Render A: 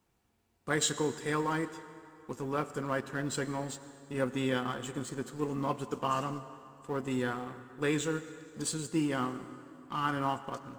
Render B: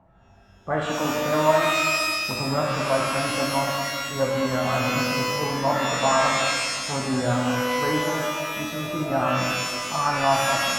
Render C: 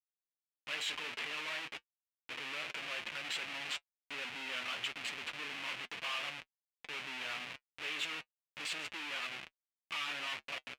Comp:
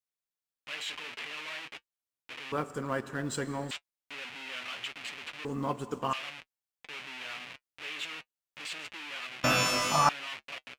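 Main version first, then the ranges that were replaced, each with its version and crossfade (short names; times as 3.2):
C
2.52–3.71 from A
5.45–6.13 from A
9.44–10.09 from B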